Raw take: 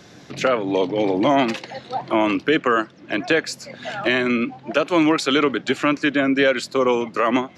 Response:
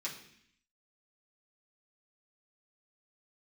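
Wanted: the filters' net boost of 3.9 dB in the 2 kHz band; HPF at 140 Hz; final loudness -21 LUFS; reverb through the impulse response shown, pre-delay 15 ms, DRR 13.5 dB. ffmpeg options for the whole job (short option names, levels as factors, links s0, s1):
-filter_complex "[0:a]highpass=140,equalizer=f=2000:t=o:g=5,asplit=2[s0][s1];[1:a]atrim=start_sample=2205,adelay=15[s2];[s1][s2]afir=irnorm=-1:irlink=0,volume=0.188[s3];[s0][s3]amix=inputs=2:normalize=0,volume=0.794"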